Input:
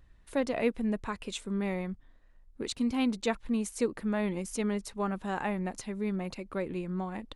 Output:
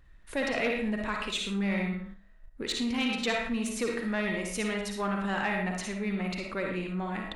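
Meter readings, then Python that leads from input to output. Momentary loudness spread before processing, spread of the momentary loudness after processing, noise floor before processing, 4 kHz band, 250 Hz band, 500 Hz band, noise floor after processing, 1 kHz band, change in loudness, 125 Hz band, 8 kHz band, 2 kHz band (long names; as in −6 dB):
7 LU, 5 LU, −58 dBFS, +8.0 dB, 0.0 dB, 0.0 dB, −54 dBFS, +2.5 dB, +2.0 dB, +1.5 dB, +2.5 dB, +8.5 dB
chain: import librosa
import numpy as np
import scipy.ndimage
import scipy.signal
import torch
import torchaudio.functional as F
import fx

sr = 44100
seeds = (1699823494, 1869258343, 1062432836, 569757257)

p1 = fx.rev_freeverb(x, sr, rt60_s=0.43, hf_ratio=0.6, predelay_ms=25, drr_db=3.0)
p2 = fx.dynamic_eq(p1, sr, hz=3200.0, q=0.9, threshold_db=-52.0, ratio=4.0, max_db=7)
p3 = p2 + fx.room_flutter(p2, sr, wall_m=9.5, rt60_s=0.38, dry=0)
p4 = 10.0 ** (-21.0 / 20.0) * np.tanh(p3 / 10.0 ** (-21.0 / 20.0))
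p5 = fx.level_steps(p4, sr, step_db=24)
p6 = p4 + (p5 * librosa.db_to_amplitude(-0.5))
p7 = fx.peak_eq(p6, sr, hz=1800.0, db=5.5, octaves=1.2)
p8 = fx.end_taper(p7, sr, db_per_s=480.0)
y = p8 * librosa.db_to_amplitude(-2.0)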